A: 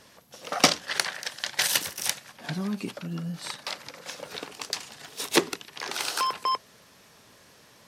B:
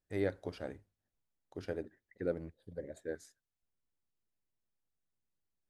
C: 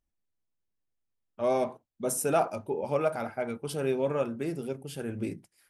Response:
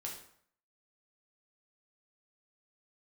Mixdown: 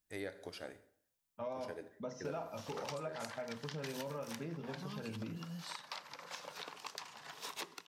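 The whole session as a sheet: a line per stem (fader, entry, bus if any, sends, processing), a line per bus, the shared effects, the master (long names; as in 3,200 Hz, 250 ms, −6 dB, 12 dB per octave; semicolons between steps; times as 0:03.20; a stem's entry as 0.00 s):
−14.0 dB, 2.25 s, bus A, send −18 dB, low-shelf EQ 360 Hz −11 dB; multiband upward and downward compressor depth 70%
−3.5 dB, 0.00 s, no bus, send −6.5 dB, spectral tilt +3 dB per octave
−7.0 dB, 0.00 s, bus A, send −7.5 dB, elliptic low-pass filter 5,800 Hz; mains-hum notches 60/120/180/240/300/360/420/480/540/600 Hz; notch comb filter 370 Hz
bus A: 0.0 dB, graphic EQ with 15 bands 160 Hz +7 dB, 1,000 Hz +8 dB, 10,000 Hz −8 dB; downward compressor 2.5 to 1, threshold −37 dBFS, peak gain reduction 8 dB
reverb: on, RT60 0.60 s, pre-delay 3 ms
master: downward compressor 3 to 1, threshold −40 dBFS, peak gain reduction 8.5 dB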